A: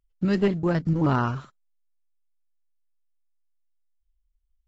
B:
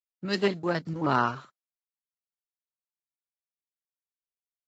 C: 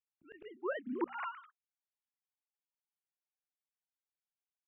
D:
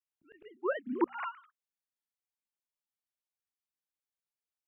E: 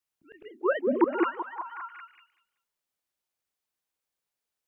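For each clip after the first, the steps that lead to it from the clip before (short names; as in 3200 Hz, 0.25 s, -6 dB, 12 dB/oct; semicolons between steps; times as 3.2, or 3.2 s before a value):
HPF 530 Hz 6 dB/oct; dynamic EQ 4200 Hz, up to +6 dB, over -59 dBFS, Q 4.1; three-band expander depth 70%; gain +1.5 dB
sine-wave speech; auto swell 0.789 s; notches 60/120/180/240 Hz; gain -1 dB
upward expander 1.5:1, over -51 dBFS; gain +7 dB
delay with a stepping band-pass 0.19 s, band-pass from 460 Hz, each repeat 0.7 oct, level -1 dB; gain +6.5 dB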